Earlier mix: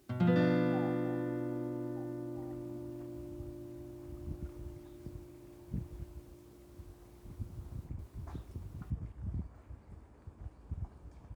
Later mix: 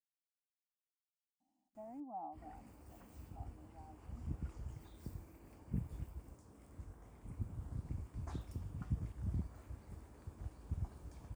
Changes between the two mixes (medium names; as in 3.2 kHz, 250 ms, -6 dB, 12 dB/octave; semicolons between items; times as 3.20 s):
speech: entry +1.40 s; first sound: muted; master: add treble shelf 5.3 kHz +11.5 dB